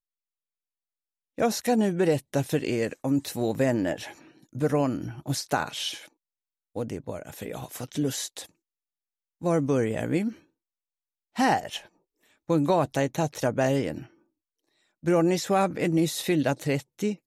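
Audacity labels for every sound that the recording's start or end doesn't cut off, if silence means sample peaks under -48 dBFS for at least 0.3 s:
1.380000	6.080000	sound
6.760000	8.490000	sound
9.410000	10.400000	sound
11.350000	11.870000	sound
12.490000	14.070000	sound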